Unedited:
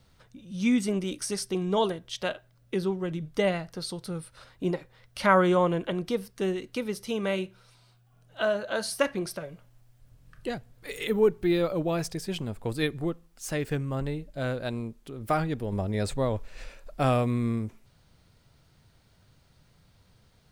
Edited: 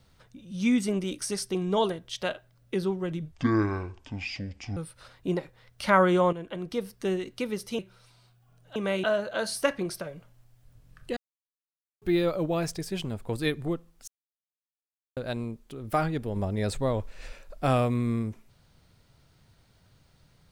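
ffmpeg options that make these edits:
-filter_complex "[0:a]asplit=11[a][b][c][d][e][f][g][h][i][j][k];[a]atrim=end=3.324[l];[b]atrim=start=3.32:end=4.13,asetpts=PTS-STARTPTS,asetrate=24696,aresample=44100,atrim=end_sample=63787,asetpts=PTS-STARTPTS[m];[c]atrim=start=4.126:end=5.69,asetpts=PTS-STARTPTS,afade=t=out:st=1.56:d=0.004:c=hsin:silence=0.251189[n];[d]atrim=start=5.69:end=7.152,asetpts=PTS-STARTPTS,afade=t=in:d=0.62:silence=0.251189[o];[e]atrim=start=7.428:end=8.402[p];[f]atrim=start=7.148:end=7.432[q];[g]atrim=start=8.398:end=10.53,asetpts=PTS-STARTPTS,afade=t=out:st=2.128:d=0.004:c=hsin[r];[h]atrim=start=10.53:end=11.38,asetpts=PTS-STARTPTS,volume=0[s];[i]atrim=start=11.38:end=13.44,asetpts=PTS-STARTPTS,afade=t=in:d=0.004:c=hsin,afade=t=out:st=2.056:d=0.004:c=hsin[t];[j]atrim=start=13.44:end=14.53,asetpts=PTS-STARTPTS,volume=0[u];[k]atrim=start=14.53,asetpts=PTS-STARTPTS,afade=t=in:d=0.004:c=hsin[v];[l][m]acrossfade=d=0.004:c1=hsin:c2=hsin[w];[n][o]concat=n=2:v=0:a=1[x];[w][x]acrossfade=d=0.004:c1=hsin:c2=hsin[y];[y][p]acrossfade=d=0.004:c1=hsin:c2=hsin[z];[z][q]acrossfade=d=0.004:c1=hsin:c2=hsin[aa];[r][s][t][u][v]concat=n=5:v=0:a=1[ab];[aa][ab]acrossfade=d=0.004:c1=hsin:c2=hsin"

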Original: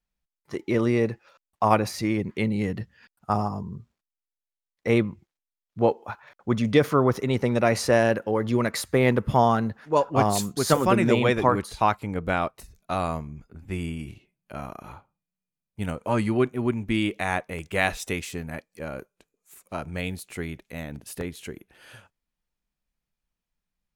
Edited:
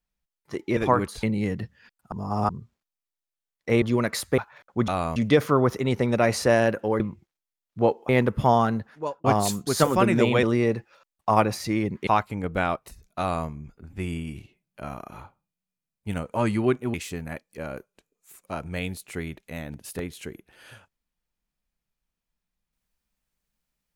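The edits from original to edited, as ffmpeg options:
-filter_complex "[0:a]asplit=15[a][b][c][d][e][f][g][h][i][j][k][l][m][n][o];[a]atrim=end=0.772[p];[b]atrim=start=11.328:end=11.792[q];[c]atrim=start=2.408:end=3.302[r];[d]atrim=start=3.298:end=3.672,asetpts=PTS-STARTPTS,areverse[s];[e]atrim=start=3.668:end=5.002[t];[f]atrim=start=8.428:end=8.992[u];[g]atrim=start=6.088:end=6.592[v];[h]atrim=start=12.908:end=13.192[w];[i]atrim=start=6.588:end=8.432[x];[j]atrim=start=4.998:end=6.092[y];[k]atrim=start=8.988:end=10.14,asetpts=PTS-STARTPTS,afade=t=out:st=0.662:d=0.49[z];[l]atrim=start=10.14:end=11.332,asetpts=PTS-STARTPTS,afade=t=in:d=0.004:c=hsin[aa];[m]atrim=start=0.768:end=2.412[ab];[n]atrim=start=11.788:end=16.662[ac];[o]atrim=start=18.158[ad];[p][q]acrossfade=d=0.004:c1=hsin:c2=hsin[ae];[ae][r]acrossfade=d=0.004:c1=hsin:c2=hsin[af];[af][s]acrossfade=d=0.004:c1=hsin:c2=hsin[ag];[ag][t]acrossfade=d=0.004:c1=hsin:c2=hsin[ah];[ah][u]acrossfade=d=0.004:c1=hsin:c2=hsin[ai];[ai][v]acrossfade=d=0.004:c1=hsin:c2=hsin[aj];[aj][w]acrossfade=d=0.004:c1=hsin:c2=hsin[ak];[ak][x]acrossfade=d=0.004:c1=hsin:c2=hsin[al];[al][y]acrossfade=d=0.004:c1=hsin:c2=hsin[am];[z][aa]concat=n=2:v=0:a=1[an];[am][an]acrossfade=d=0.004:c1=hsin:c2=hsin[ao];[ao][ab]acrossfade=d=0.004:c1=hsin:c2=hsin[ap];[ap][ac]acrossfade=d=0.004:c1=hsin:c2=hsin[aq];[aq][ad]acrossfade=d=0.004:c1=hsin:c2=hsin"

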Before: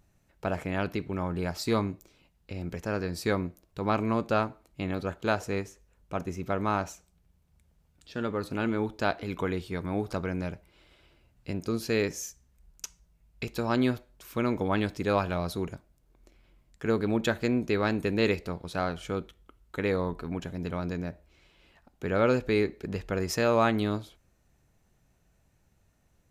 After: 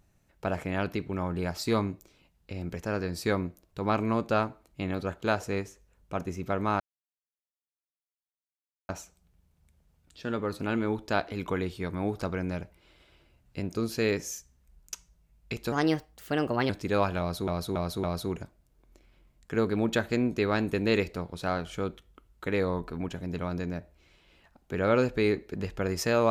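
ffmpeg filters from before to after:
-filter_complex "[0:a]asplit=7[a][b][c][d][e][f][g];[a]atrim=end=6.8,asetpts=PTS-STARTPTS,afade=t=out:st=6.796:d=0.004:c=hsin,apad=pad_dur=2.09[h];[b]atrim=start=6.8:end=13.634,asetpts=PTS-STARTPTS,afade=t=in:d=0.004:c=hsin[i];[c]atrim=start=13.63:end=14.85,asetpts=PTS-STARTPTS,asetrate=55125,aresample=44100[j];[d]atrim=start=14.846:end=15.632[k];[e]atrim=start=15.348:end=15.632[l];[f]atrim=start=15.348:end=15.632[m];[g]atrim=start=15.348[n];[h][i]concat=n=2:v=0:a=1[o];[o][j]acrossfade=d=0.004:c1=hsin:c2=hsin[p];[p][k]acrossfade=d=0.004:c1=hsin:c2=hsin[q];[q][l]acrossfade=d=0.004:c1=hsin:c2=hsin[r];[r][m]acrossfade=d=0.004:c1=hsin:c2=hsin[s];[s][n]acrossfade=d=0.004:c1=hsin:c2=hsin"

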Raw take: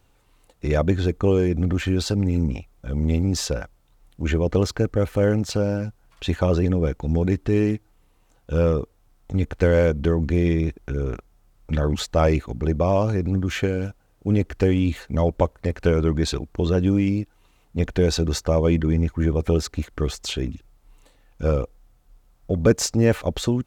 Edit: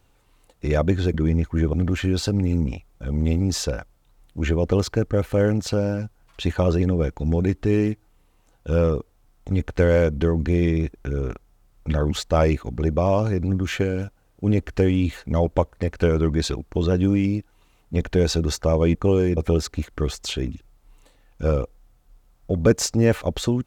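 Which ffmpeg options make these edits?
-filter_complex "[0:a]asplit=5[a][b][c][d][e];[a]atrim=end=1.142[f];[b]atrim=start=18.778:end=19.372[g];[c]atrim=start=1.558:end=18.782[h];[d]atrim=start=1.138:end=1.562[i];[e]atrim=start=19.368[j];[f][g]acrossfade=d=0.004:c1=hsin:c2=hsin[k];[k][h]acrossfade=d=0.004:c1=hsin:c2=hsin[l];[l][i]acrossfade=d=0.004:c1=hsin:c2=hsin[m];[m][j]acrossfade=d=0.004:c1=hsin:c2=hsin"

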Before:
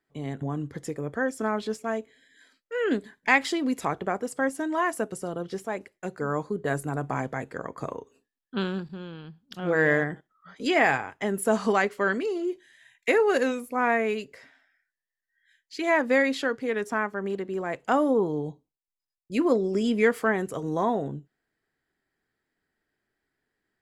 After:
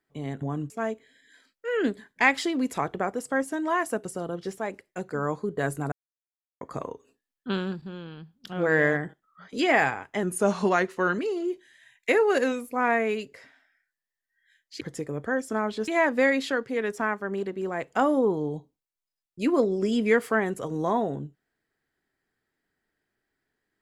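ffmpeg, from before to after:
-filter_complex "[0:a]asplit=8[a][b][c][d][e][f][g][h];[a]atrim=end=0.702[i];[b]atrim=start=1.768:end=6.99,asetpts=PTS-STARTPTS,afade=t=out:st=5.218:d=0.004:c=hsin[j];[c]atrim=start=6.99:end=7.68,asetpts=PTS-STARTPTS,volume=0[k];[d]atrim=start=7.68:end=11.304,asetpts=PTS-STARTPTS,afade=t=in:d=0.004:c=hsin[l];[e]atrim=start=11.3:end=12.18,asetpts=PTS-STARTPTS,asetrate=40572,aresample=44100[m];[f]atrim=start=12.176:end=15.802[n];[g]atrim=start=0.698:end=1.772[o];[h]atrim=start=15.798[p];[j][k][l]concat=n=3:v=0:a=1[q];[i][q]acrossfade=d=0.004:c1=hsin:c2=hsin[r];[r][m]acrossfade=d=0.004:c1=hsin:c2=hsin[s];[s][n]acrossfade=d=0.004:c1=hsin:c2=hsin[t];[t][o]acrossfade=d=0.004:c1=hsin:c2=hsin[u];[u][p]acrossfade=d=0.004:c1=hsin:c2=hsin"

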